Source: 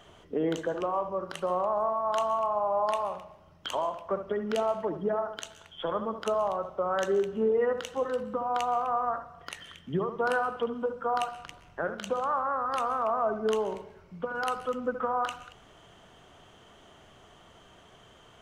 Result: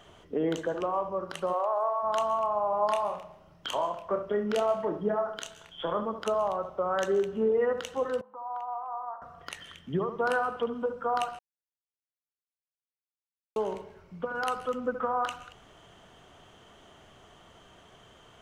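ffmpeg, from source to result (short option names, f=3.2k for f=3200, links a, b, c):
-filter_complex "[0:a]asplit=3[a][b][c];[a]afade=t=out:st=1.52:d=0.02[d];[b]highpass=f=420:w=0.5412,highpass=f=420:w=1.3066,afade=t=in:st=1.52:d=0.02,afade=t=out:st=2.02:d=0.02[e];[c]afade=t=in:st=2.02:d=0.02[f];[d][e][f]amix=inputs=3:normalize=0,asettb=1/sr,asplit=3[g][h][i];[g]atrim=end=2.704[j];[h]atrim=start=2.7:end=6.03,asetpts=PTS-STARTPTS,afade=t=in:d=0.004:c=qsin,afade=t=out:st=3.326:d=0.004:c=qsin,asplit=2[k][l];[l]adelay=29,volume=-6.5dB[m];[k][m]amix=inputs=2:normalize=0,atrim=end_sample=146853[n];[i]atrim=start=6.026[o];[j][n]acrossfade=d=0.004:c1=hsin:c2=qsin[p];[p][o]acrossfade=d=0.004:c1=qsin:c2=hsin,asettb=1/sr,asplit=3[q][r][s];[q]atrim=end=8.214[t];[r]atrim=start=8.21:end=9.22,asetpts=PTS-STARTPTS,afade=t=in:d=0.004:c=qsin,afade=t=out:st=1.006:d=0.004:c=qsin,bandpass=f=890:t=q:w=5.5[u];[s]atrim=start=9.216[v];[t][u]acrossfade=d=0.004:c1=hsin:c2=qsin[w];[w][v]acrossfade=d=0.004:c1=qsin:c2=hsin,asplit=3[x][y][z];[x]atrim=end=11.39,asetpts=PTS-STARTPTS,afade=t=out:st=11.386:d=0.004:c=hsin[aa];[y]atrim=start=11.39:end=13.56,asetpts=PTS-STARTPTS,volume=0[ab];[z]atrim=start=13.56,asetpts=PTS-STARTPTS,afade=t=in:d=0.004:c=hsin[ac];[aa][ab][ac]concat=n=3:v=0:a=1"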